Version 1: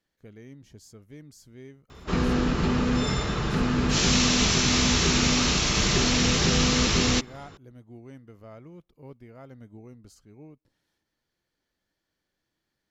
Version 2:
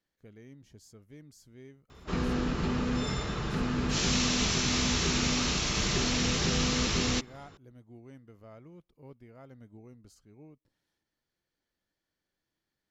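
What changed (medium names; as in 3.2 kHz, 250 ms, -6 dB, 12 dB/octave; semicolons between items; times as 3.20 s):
speech -5.0 dB; background -6.0 dB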